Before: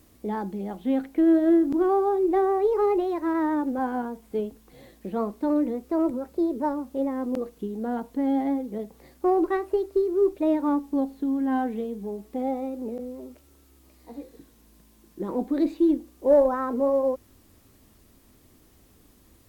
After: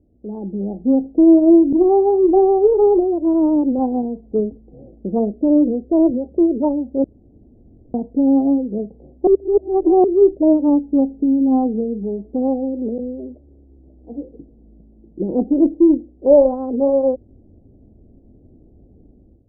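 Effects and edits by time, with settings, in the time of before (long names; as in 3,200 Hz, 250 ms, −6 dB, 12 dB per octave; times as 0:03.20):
0:05.19–0:05.93: flat-topped bell 1,500 Hz −10.5 dB
0:07.04–0:07.94: fill with room tone
0:09.27–0:10.04: reverse
whole clip: adaptive Wiener filter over 41 samples; Butterworth low-pass 800 Hz 36 dB per octave; automatic gain control gain up to 11 dB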